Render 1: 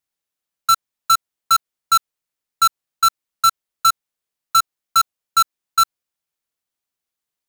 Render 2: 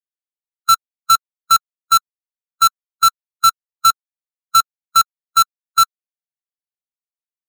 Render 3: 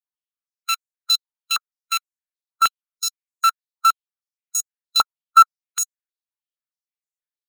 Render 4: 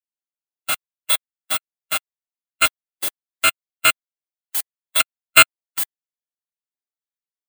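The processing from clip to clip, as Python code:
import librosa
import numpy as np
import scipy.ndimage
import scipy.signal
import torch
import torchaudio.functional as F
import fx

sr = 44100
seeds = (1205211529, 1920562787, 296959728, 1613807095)

y1 = fx.bin_expand(x, sr, power=1.5)
y1 = y1 * 10.0 ** (3.0 / 20.0)
y2 = fx.cheby_harmonics(y1, sr, harmonics=(8,), levels_db=(-12,), full_scale_db=-8.0)
y2 = fx.filter_held_highpass(y2, sr, hz=6.4, low_hz=940.0, high_hz=7000.0)
y2 = y2 * 10.0 ** (-8.0 / 20.0)
y3 = fx.bit_reversed(y2, sr, seeds[0], block=256)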